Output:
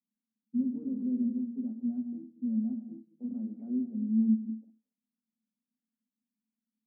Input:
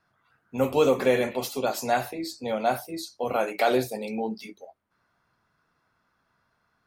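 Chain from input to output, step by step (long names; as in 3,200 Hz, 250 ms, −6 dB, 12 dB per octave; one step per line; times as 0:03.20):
reverb whose tail is shaped and stops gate 290 ms flat, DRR 11 dB
leveller curve on the samples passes 2
flat-topped band-pass 230 Hz, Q 5.5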